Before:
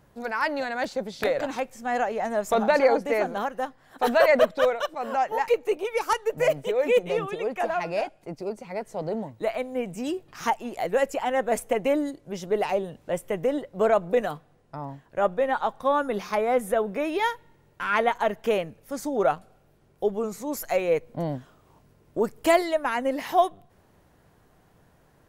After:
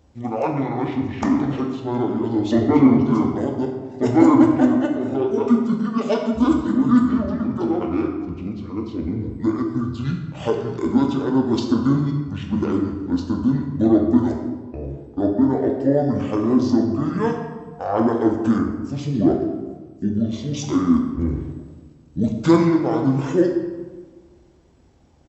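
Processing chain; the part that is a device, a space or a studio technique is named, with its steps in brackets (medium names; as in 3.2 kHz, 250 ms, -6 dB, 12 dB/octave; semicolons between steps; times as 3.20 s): high-pass 110 Hz 12 dB/octave; monster voice (pitch shift -12 st; bass shelf 210 Hz +3 dB; reverberation RT60 1.4 s, pre-delay 3 ms, DRR 1 dB); 18.58–19.14 s: peaking EQ 3.4 kHz -6 dB 0.77 oct; trim +2 dB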